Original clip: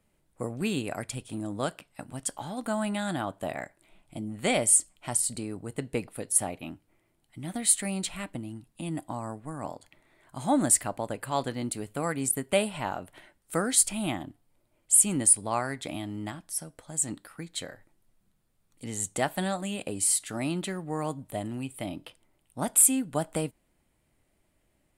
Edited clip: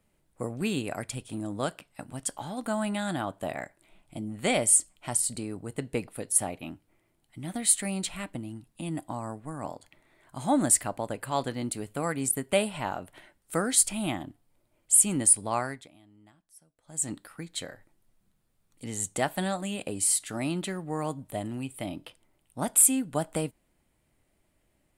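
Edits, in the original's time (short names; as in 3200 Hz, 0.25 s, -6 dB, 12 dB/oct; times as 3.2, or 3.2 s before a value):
15.63–17.06 dip -22 dB, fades 0.26 s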